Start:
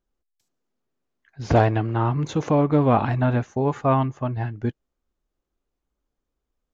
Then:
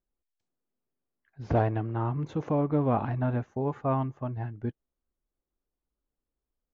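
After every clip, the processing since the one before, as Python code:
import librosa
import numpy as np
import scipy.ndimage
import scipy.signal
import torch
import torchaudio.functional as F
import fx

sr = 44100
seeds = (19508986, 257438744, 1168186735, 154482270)

y = fx.lowpass(x, sr, hz=1400.0, slope=6)
y = y * librosa.db_to_amplitude(-7.0)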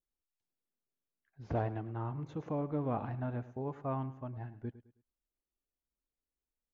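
y = fx.echo_feedback(x, sr, ms=106, feedback_pct=34, wet_db=-16)
y = y * librosa.db_to_amplitude(-9.0)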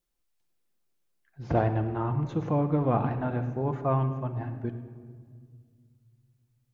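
y = fx.room_shoebox(x, sr, seeds[0], volume_m3=3200.0, walls='mixed', distance_m=0.85)
y = y * librosa.db_to_amplitude(9.0)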